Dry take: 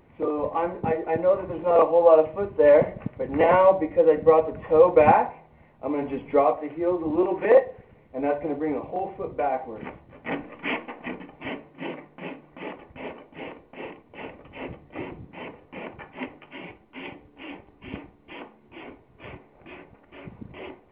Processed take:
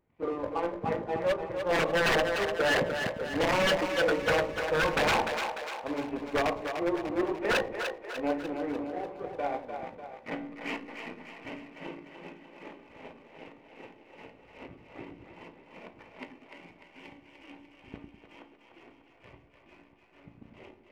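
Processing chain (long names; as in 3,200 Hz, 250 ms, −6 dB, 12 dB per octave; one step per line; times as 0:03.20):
tuned comb filter 57 Hz, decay 0.53 s, harmonics all, mix 70%
power curve on the samples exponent 1.4
wave folding −26.5 dBFS
on a send: echo with a time of its own for lows and highs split 390 Hz, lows 101 ms, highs 297 ms, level −6.5 dB
on the sum: level +6.5 dB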